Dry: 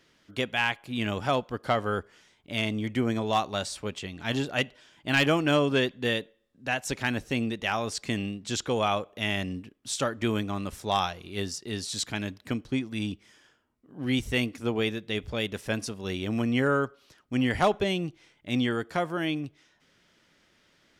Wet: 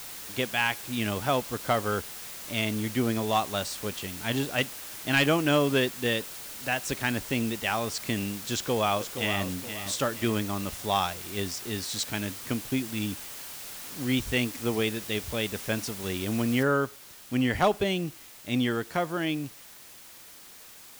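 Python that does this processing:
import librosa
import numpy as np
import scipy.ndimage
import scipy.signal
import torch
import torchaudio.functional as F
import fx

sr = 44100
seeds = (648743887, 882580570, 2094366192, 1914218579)

y = fx.echo_throw(x, sr, start_s=8.53, length_s=0.91, ms=470, feedback_pct=35, wet_db=-9.5)
y = fx.noise_floor_step(y, sr, seeds[0], at_s=16.63, before_db=-41, after_db=-49, tilt_db=0.0)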